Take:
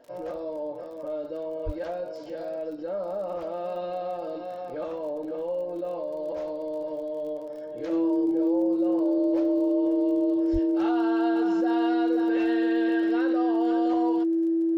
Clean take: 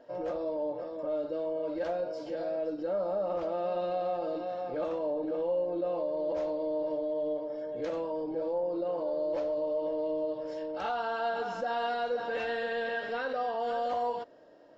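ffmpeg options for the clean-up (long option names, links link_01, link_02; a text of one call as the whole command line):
ffmpeg -i in.wav -filter_complex "[0:a]adeclick=threshold=4,bandreject=frequency=330:width=30,asplit=3[link_01][link_02][link_03];[link_01]afade=type=out:start_time=1.65:duration=0.02[link_04];[link_02]highpass=frequency=140:width=0.5412,highpass=frequency=140:width=1.3066,afade=type=in:start_time=1.65:duration=0.02,afade=type=out:start_time=1.77:duration=0.02[link_05];[link_03]afade=type=in:start_time=1.77:duration=0.02[link_06];[link_04][link_05][link_06]amix=inputs=3:normalize=0,asplit=3[link_07][link_08][link_09];[link_07]afade=type=out:start_time=10.52:duration=0.02[link_10];[link_08]highpass=frequency=140:width=0.5412,highpass=frequency=140:width=1.3066,afade=type=in:start_time=10.52:duration=0.02,afade=type=out:start_time=10.64:duration=0.02[link_11];[link_09]afade=type=in:start_time=10.64:duration=0.02[link_12];[link_10][link_11][link_12]amix=inputs=3:normalize=0" out.wav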